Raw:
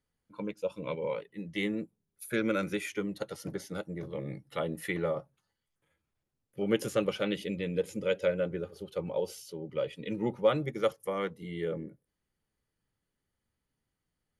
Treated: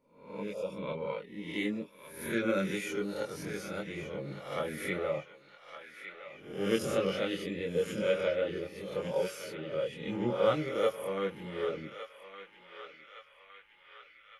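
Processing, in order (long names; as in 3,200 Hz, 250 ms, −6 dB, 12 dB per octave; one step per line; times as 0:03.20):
peak hold with a rise ahead of every peak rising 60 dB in 0.62 s
multi-voice chorus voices 4, 0.15 Hz, delay 23 ms, depth 3.6 ms
feedback echo with a band-pass in the loop 1,162 ms, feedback 70%, band-pass 2,200 Hz, level −8 dB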